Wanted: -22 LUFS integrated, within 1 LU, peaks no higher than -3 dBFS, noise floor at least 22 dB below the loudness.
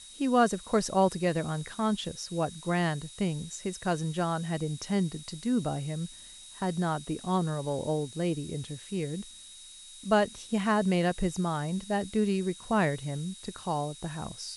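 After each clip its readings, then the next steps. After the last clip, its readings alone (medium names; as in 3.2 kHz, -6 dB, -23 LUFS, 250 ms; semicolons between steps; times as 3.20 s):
steady tone 3.8 kHz; tone level -50 dBFS; noise floor -49 dBFS; noise floor target -53 dBFS; loudness -30.5 LUFS; peak level -12.5 dBFS; loudness target -22.0 LUFS
-> band-stop 3.8 kHz, Q 30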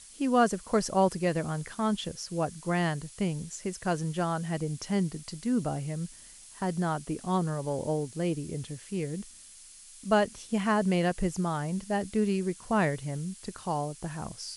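steady tone not found; noise floor -51 dBFS; noise floor target -53 dBFS
-> noise print and reduce 6 dB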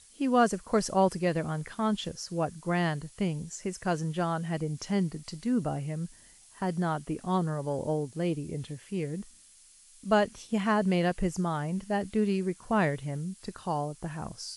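noise floor -56 dBFS; loudness -30.5 LUFS; peak level -13.0 dBFS; loudness target -22.0 LUFS
-> trim +8.5 dB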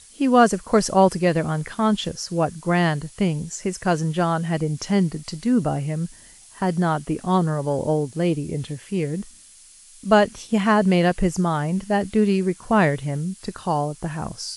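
loudness -22.0 LUFS; peak level -4.5 dBFS; noise floor -48 dBFS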